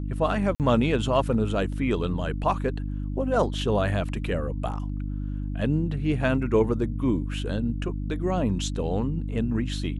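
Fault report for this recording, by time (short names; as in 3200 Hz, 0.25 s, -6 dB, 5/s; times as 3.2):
hum 50 Hz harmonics 6 -30 dBFS
0.55–0.6 gap 48 ms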